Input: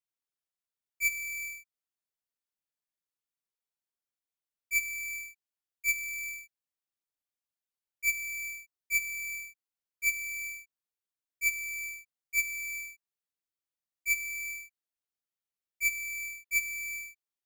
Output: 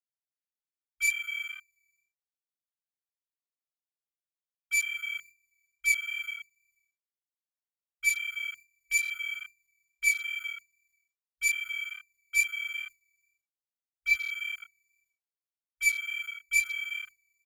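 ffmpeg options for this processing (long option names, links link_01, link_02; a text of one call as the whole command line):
ffmpeg -i in.wav -af "flanger=delay=20:depth=2.3:speed=2.4,aecho=1:1:486:0.0631,afwtdn=0.00631,volume=7dB" out.wav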